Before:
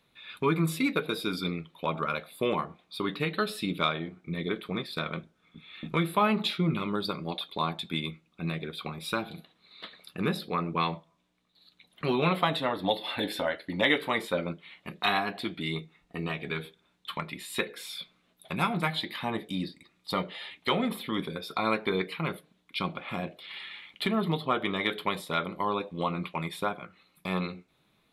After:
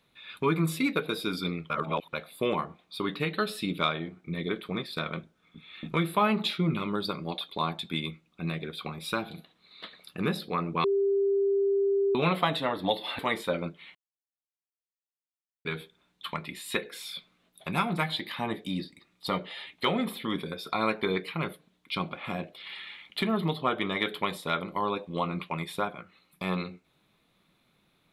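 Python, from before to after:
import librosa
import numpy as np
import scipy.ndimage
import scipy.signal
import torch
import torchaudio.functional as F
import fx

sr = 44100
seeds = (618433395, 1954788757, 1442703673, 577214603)

y = fx.edit(x, sr, fx.reverse_span(start_s=1.7, length_s=0.43),
    fx.bleep(start_s=10.84, length_s=1.31, hz=396.0, db=-22.0),
    fx.cut(start_s=13.19, length_s=0.84),
    fx.silence(start_s=14.79, length_s=1.7), tone=tone)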